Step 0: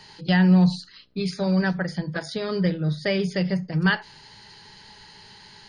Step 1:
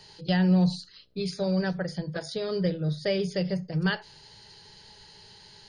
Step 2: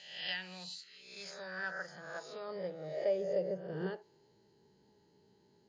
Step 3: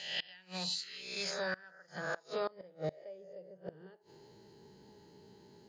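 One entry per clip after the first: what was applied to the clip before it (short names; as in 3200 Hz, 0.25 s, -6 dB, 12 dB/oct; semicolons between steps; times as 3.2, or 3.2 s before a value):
graphic EQ 250/500/1000/2000 Hz -7/+4/-6/-6 dB; gain -1.5 dB
spectral swells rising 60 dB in 0.82 s; band-pass sweep 2500 Hz -> 290 Hz, 0.71–4.49; synth low-pass 7100 Hz, resonance Q 5.4; gain -3 dB
flipped gate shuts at -34 dBFS, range -26 dB; gain +9.5 dB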